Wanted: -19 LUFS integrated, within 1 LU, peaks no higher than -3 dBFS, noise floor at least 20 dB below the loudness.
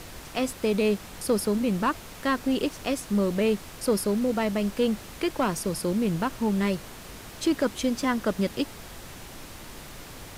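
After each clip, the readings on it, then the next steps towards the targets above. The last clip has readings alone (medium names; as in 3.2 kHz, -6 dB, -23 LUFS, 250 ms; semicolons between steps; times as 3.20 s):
clipped samples 0.2%; clipping level -16.0 dBFS; noise floor -43 dBFS; noise floor target -47 dBFS; loudness -27.0 LUFS; peak level -16.0 dBFS; loudness target -19.0 LUFS
-> clip repair -16 dBFS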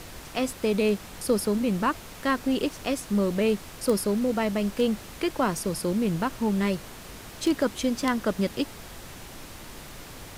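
clipped samples 0.0%; noise floor -43 dBFS; noise floor target -47 dBFS
-> noise print and reduce 6 dB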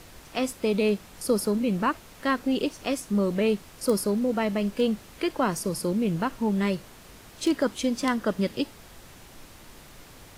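noise floor -49 dBFS; loudness -27.0 LUFS; peak level -8.0 dBFS; loudness target -19.0 LUFS
-> trim +8 dB; peak limiter -3 dBFS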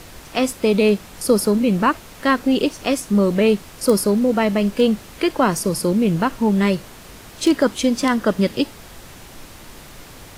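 loudness -19.0 LUFS; peak level -3.0 dBFS; noise floor -41 dBFS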